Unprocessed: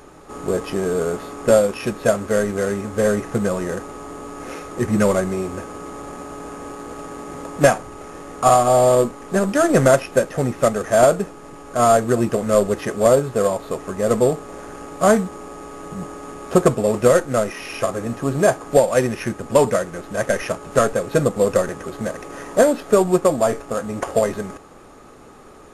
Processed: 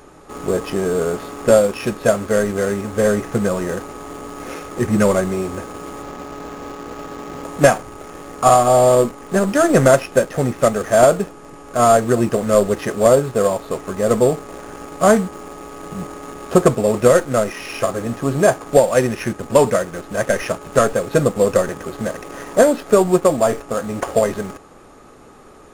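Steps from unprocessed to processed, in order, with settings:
0:06.03–0:07.44: low-pass filter 6,600 Hz 24 dB per octave
in parallel at −12 dB: bit reduction 5 bits

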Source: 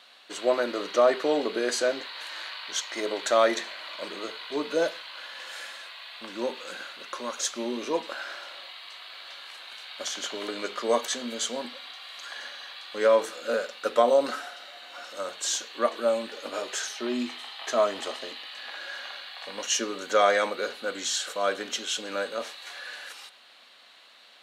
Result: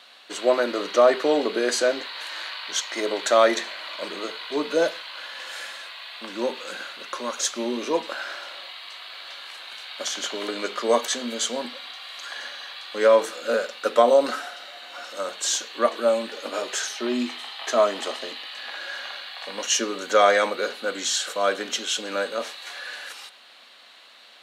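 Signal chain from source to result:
high-pass filter 140 Hz 24 dB per octave
level +4 dB

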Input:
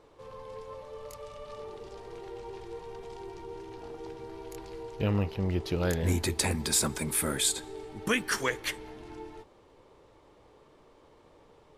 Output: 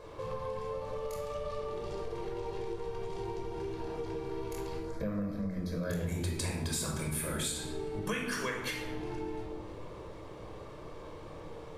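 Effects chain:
0:04.77–0:05.90: phaser with its sweep stopped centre 570 Hz, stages 8
rectangular room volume 2,300 cubic metres, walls furnished, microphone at 5.4 metres
downward compressor 4 to 1, threshold −41 dBFS, peak gain reduction 20 dB
level +5.5 dB

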